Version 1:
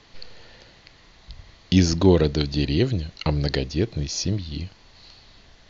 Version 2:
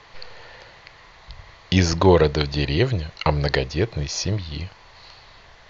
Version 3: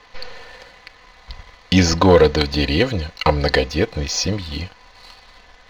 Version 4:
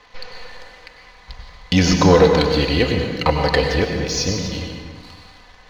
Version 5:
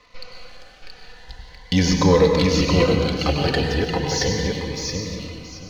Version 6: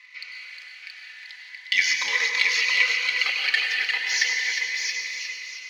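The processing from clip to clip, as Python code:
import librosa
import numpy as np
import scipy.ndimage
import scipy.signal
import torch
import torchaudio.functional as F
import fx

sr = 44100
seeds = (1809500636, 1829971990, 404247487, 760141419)

y1 = fx.graphic_eq(x, sr, hz=(125, 250, 500, 1000, 2000), db=(3, -7, 5, 9, 6))
y2 = y1 + 0.66 * np.pad(y1, (int(4.0 * sr / 1000.0), 0))[:len(y1)]
y2 = fx.leveller(y2, sr, passes=1)
y3 = fx.rev_plate(y2, sr, seeds[0], rt60_s=1.6, hf_ratio=0.65, predelay_ms=85, drr_db=2.5)
y3 = y3 * librosa.db_to_amplitude(-1.5)
y4 = fx.echo_feedback(y3, sr, ms=675, feedback_pct=24, wet_db=-3.5)
y4 = fx.notch_cascade(y4, sr, direction='rising', hz=0.38)
y4 = y4 * librosa.db_to_amplitude(-2.5)
y5 = fx.highpass_res(y4, sr, hz=2100.0, q=6.3)
y5 = y5 + 10.0 ** (-7.0 / 20.0) * np.pad(y5, (int(359 * sr / 1000.0), 0))[:len(y5)]
y5 = y5 * librosa.db_to_amplitude(-2.5)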